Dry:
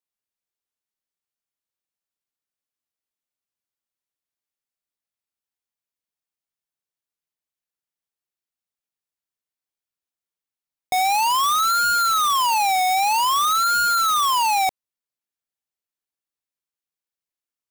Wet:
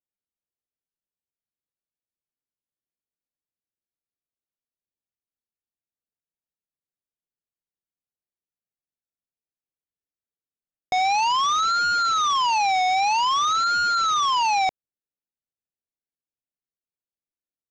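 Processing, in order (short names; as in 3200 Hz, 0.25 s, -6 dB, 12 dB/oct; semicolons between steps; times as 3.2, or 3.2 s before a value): Wiener smoothing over 41 samples; elliptic low-pass 6200 Hz, stop band 60 dB; gain +1 dB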